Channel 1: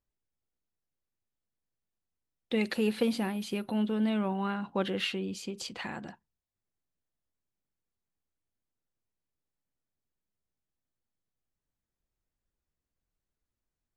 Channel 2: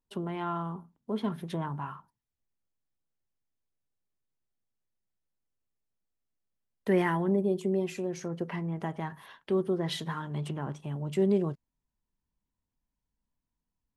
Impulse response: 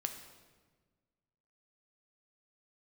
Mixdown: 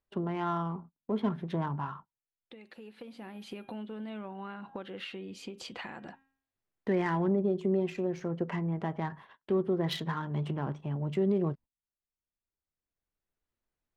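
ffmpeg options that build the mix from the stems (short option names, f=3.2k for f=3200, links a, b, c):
-filter_complex "[0:a]bass=f=250:g=-5,treble=f=4k:g=-10,bandreject=f=269.4:t=h:w=4,bandreject=f=538.8:t=h:w=4,bandreject=f=808.2:t=h:w=4,bandreject=f=1.0776k:t=h:w=4,bandreject=f=1.347k:t=h:w=4,bandreject=f=1.6164k:t=h:w=4,bandreject=f=1.8858k:t=h:w=4,bandreject=f=2.1552k:t=h:w=4,bandreject=f=2.4246k:t=h:w=4,bandreject=f=2.694k:t=h:w=4,bandreject=f=2.9634k:t=h:w=4,bandreject=f=3.2328k:t=h:w=4,bandreject=f=3.5022k:t=h:w=4,bandreject=f=3.7716k:t=h:w=4,acompressor=threshold=-41dB:ratio=8,volume=3dB[a];[1:a]agate=range=-23dB:threshold=-49dB:ratio=16:detection=peak,alimiter=limit=-21dB:level=0:latency=1:release=90,adynamicsmooth=sensitivity=6:basefreq=2.7k,volume=1.5dB,asplit=2[b][c];[c]apad=whole_len=616034[d];[a][d]sidechaincompress=threshold=-49dB:ratio=4:attack=5.2:release=1220[e];[e][b]amix=inputs=2:normalize=0"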